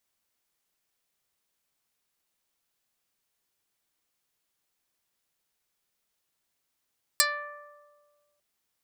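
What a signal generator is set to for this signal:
Karplus-Strong string D5, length 1.20 s, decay 1.73 s, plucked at 0.19, dark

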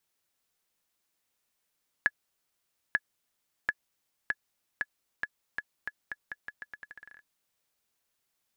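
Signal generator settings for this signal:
bouncing ball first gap 0.89 s, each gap 0.83, 1,700 Hz, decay 44 ms −11.5 dBFS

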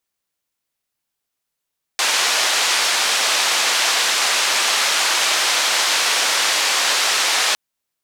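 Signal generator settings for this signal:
band-limited noise 640–5,700 Hz, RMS −18 dBFS 5.56 s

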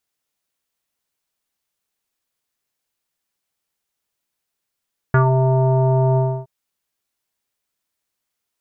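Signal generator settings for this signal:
subtractive voice square C3 24 dB per octave, low-pass 810 Hz, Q 4.2, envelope 1 octave, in 0.16 s, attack 2.2 ms, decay 0.11 s, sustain −4 dB, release 0.29 s, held 1.03 s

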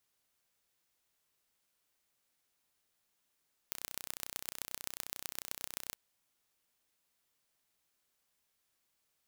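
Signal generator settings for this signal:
impulse train 31.2 per second, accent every 4, −9.5 dBFS 2.22 s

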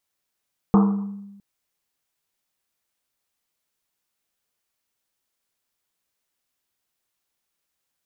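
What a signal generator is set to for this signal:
drum after Risset length 0.66 s, pitch 200 Hz, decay 1.18 s, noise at 980 Hz, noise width 520 Hz, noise 15%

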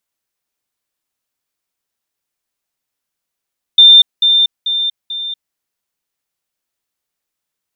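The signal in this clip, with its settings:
level staircase 3,590 Hz −1.5 dBFS, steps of −6 dB, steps 4, 0.24 s 0.20 s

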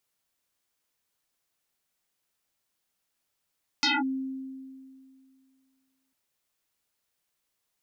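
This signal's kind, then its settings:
two-operator FM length 2.30 s, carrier 265 Hz, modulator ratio 2.16, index 10, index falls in 0.20 s linear, decay 2.33 s, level −20 dB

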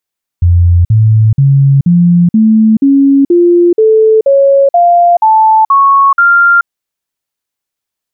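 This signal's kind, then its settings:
stepped sweep 87 Hz up, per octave 3, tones 13, 0.43 s, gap 0.05 s −3 dBFS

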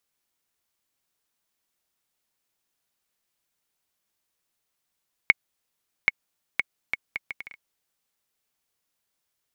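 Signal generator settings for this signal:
bouncing ball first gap 0.78 s, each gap 0.66, 2,200 Hz, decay 27 ms −1.5 dBFS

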